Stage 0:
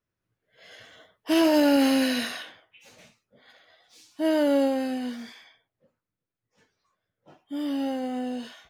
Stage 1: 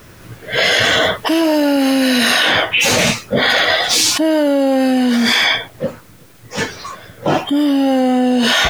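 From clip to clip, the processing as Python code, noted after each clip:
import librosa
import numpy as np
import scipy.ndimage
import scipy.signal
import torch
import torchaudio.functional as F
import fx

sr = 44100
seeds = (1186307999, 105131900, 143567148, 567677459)

y = fx.env_flatten(x, sr, amount_pct=100)
y = y * 10.0 ** (5.0 / 20.0)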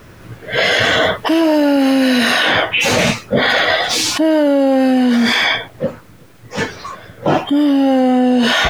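y = fx.high_shelf(x, sr, hz=3800.0, db=-8.0)
y = y * 10.0 ** (1.5 / 20.0)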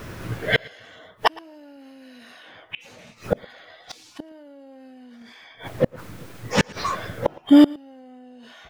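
y = fx.gate_flip(x, sr, shuts_db=-7.0, range_db=-36)
y = y + 10.0 ** (-23.0 / 20.0) * np.pad(y, (int(114 * sr / 1000.0), 0))[:len(y)]
y = y * 10.0 ** (3.0 / 20.0)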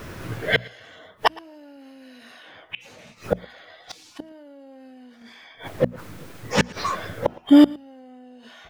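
y = fx.hum_notches(x, sr, base_hz=60, count=4)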